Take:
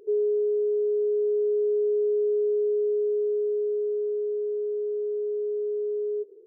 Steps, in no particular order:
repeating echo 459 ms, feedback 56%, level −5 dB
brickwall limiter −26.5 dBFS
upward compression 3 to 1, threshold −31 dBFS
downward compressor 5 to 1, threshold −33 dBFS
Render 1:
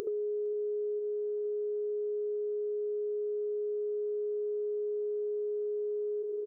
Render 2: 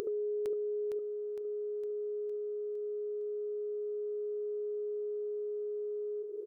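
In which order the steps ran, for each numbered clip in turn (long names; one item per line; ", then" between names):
brickwall limiter, then repeating echo, then downward compressor, then upward compression
brickwall limiter, then upward compression, then downward compressor, then repeating echo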